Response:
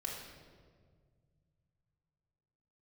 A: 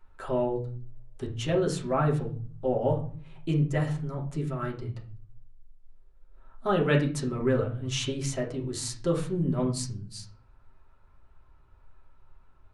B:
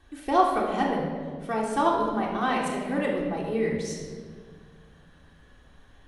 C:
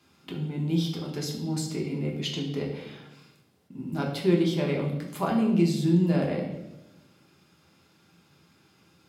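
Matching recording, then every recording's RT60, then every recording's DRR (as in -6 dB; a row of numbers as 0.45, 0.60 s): B; 0.45, 1.8, 0.95 s; -2.0, -3.0, -1.0 dB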